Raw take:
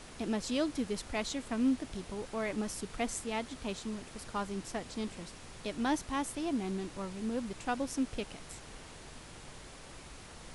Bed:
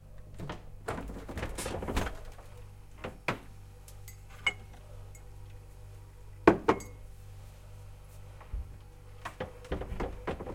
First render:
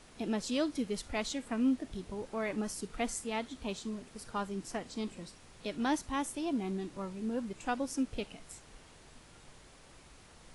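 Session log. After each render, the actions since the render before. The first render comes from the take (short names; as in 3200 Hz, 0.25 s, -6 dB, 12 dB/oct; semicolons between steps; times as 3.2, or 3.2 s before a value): noise print and reduce 7 dB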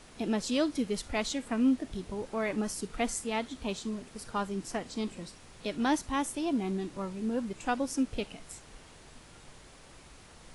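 gain +3.5 dB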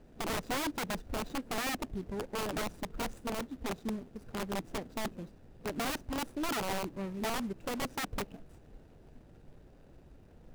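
median filter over 41 samples; wrapped overs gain 29 dB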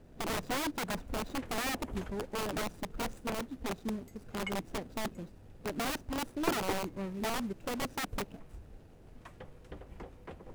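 add bed -11.5 dB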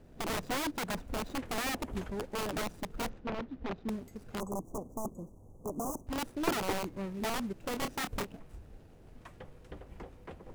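3.09–3.89 air absorption 250 m; 4.4–6.07 Chebyshev band-stop 1100–6200 Hz, order 4; 7.7–8.29 doubler 27 ms -7 dB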